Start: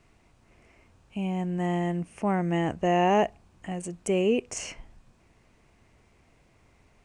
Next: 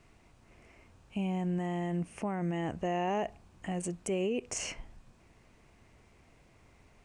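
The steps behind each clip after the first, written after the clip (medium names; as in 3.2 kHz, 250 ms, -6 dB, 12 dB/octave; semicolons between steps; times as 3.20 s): peak limiter -25 dBFS, peak gain reduction 11 dB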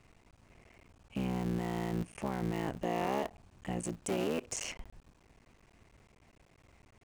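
cycle switcher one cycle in 3, muted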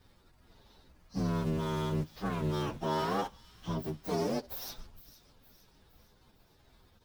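frequency axis rescaled in octaves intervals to 127%; feedback echo behind a high-pass 462 ms, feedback 49%, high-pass 2.9 kHz, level -15.5 dB; trim +4 dB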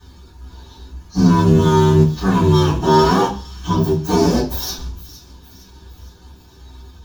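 reverberation RT60 0.40 s, pre-delay 3 ms, DRR -6.5 dB; trim +8.5 dB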